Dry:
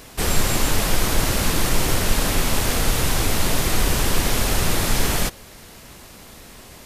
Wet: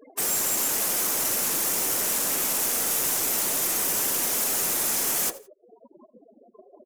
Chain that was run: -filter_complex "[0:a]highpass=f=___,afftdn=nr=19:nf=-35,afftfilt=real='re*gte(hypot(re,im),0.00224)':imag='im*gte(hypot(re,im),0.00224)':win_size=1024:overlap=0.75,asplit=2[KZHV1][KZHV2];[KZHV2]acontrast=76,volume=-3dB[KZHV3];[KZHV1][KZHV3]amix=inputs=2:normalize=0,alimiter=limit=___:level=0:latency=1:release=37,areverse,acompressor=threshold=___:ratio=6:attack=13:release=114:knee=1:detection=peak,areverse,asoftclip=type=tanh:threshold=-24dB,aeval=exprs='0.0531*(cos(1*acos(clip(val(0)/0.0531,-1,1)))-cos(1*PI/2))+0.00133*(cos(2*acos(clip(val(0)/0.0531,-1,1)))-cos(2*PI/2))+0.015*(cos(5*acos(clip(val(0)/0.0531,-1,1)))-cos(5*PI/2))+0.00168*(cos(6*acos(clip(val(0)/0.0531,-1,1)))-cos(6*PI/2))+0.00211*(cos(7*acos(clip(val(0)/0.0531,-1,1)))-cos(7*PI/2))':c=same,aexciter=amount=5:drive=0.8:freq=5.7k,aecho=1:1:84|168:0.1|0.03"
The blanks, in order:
290, -15.5dB, -35dB